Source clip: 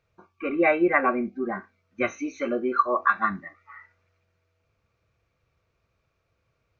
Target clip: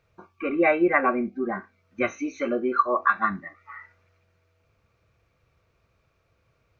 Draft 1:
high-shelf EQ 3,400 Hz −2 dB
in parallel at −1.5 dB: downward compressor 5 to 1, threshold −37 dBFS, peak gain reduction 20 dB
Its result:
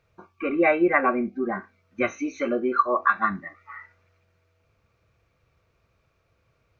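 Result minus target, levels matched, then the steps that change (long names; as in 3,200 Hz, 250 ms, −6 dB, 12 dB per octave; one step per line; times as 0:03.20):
downward compressor: peak gain reduction −5.5 dB
change: downward compressor 5 to 1, threshold −44 dBFS, peak gain reduction 25.5 dB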